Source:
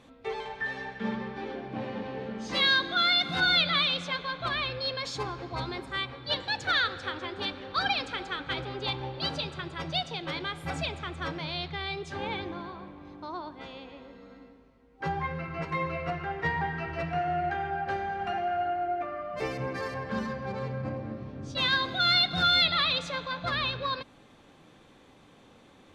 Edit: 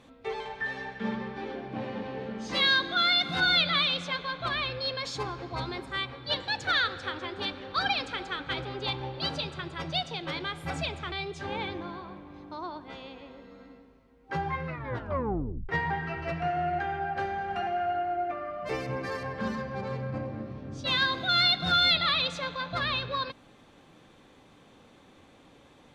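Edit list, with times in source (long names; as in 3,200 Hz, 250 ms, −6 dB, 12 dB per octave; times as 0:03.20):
0:11.12–0:11.83: remove
0:15.38: tape stop 1.02 s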